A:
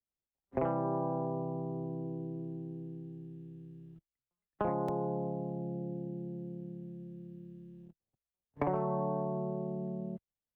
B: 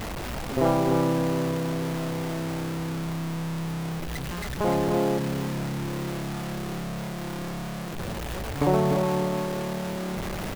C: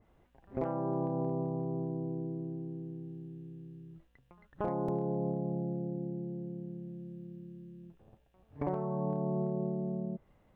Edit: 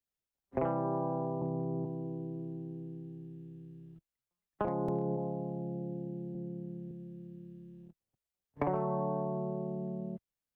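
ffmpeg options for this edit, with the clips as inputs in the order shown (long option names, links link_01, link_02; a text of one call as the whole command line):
ffmpeg -i take0.wav -i take1.wav -i take2.wav -filter_complex "[2:a]asplit=3[link_01][link_02][link_03];[0:a]asplit=4[link_04][link_05][link_06][link_07];[link_04]atrim=end=1.422[link_08];[link_01]atrim=start=1.418:end=1.852[link_09];[link_05]atrim=start=1.848:end=4.67[link_10];[link_02]atrim=start=4.65:end=5.18[link_11];[link_06]atrim=start=5.16:end=6.352[link_12];[link_03]atrim=start=6.348:end=6.912[link_13];[link_07]atrim=start=6.908[link_14];[link_08][link_09]acrossfade=duration=0.004:curve1=hsin:curve2=hsin[link_15];[link_15][link_10]acrossfade=duration=0.004:curve1=hsin:curve2=hsin[link_16];[link_16][link_11]acrossfade=duration=0.02:curve1=tri:curve2=tri[link_17];[link_17][link_12]acrossfade=duration=0.02:curve1=tri:curve2=tri[link_18];[link_18][link_13]acrossfade=duration=0.004:curve1=hsin:curve2=hsin[link_19];[link_19][link_14]acrossfade=duration=0.004:curve1=hsin:curve2=hsin" out.wav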